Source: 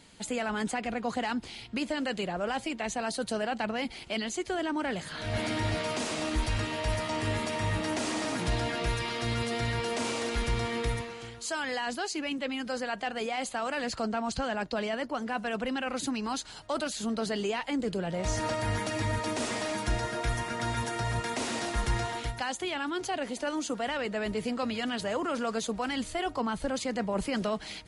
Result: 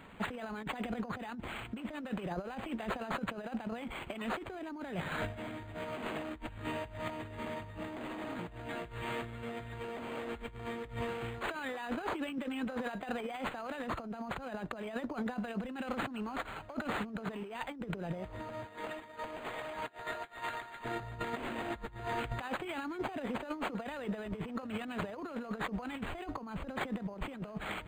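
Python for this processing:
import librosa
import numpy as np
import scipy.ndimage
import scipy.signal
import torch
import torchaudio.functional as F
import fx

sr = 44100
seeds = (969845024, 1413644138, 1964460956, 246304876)

y = fx.over_compress(x, sr, threshold_db=-36.0, ratio=-0.5)
y = fx.highpass(y, sr, hz=fx.line((18.64, 310.0), (20.84, 920.0)), slope=12, at=(18.64, 20.84), fade=0.02)
y = np.interp(np.arange(len(y)), np.arange(len(y))[::8], y[::8])
y = y * librosa.db_to_amplitude(-1.5)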